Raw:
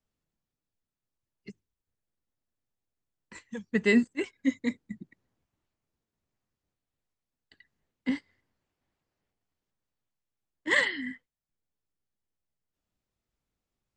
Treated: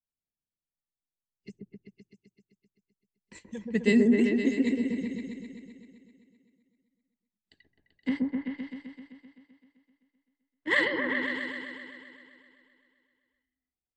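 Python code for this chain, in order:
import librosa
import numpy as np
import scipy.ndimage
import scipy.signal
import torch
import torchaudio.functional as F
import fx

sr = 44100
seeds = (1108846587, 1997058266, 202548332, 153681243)

y = fx.noise_reduce_blind(x, sr, reduce_db=18)
y = fx.peak_eq(y, sr, hz=fx.steps((0.0, 1300.0), (8.08, 7000.0)), db=-12.0, octaves=0.86)
y = fx.echo_opening(y, sr, ms=129, hz=750, octaves=1, feedback_pct=70, wet_db=0)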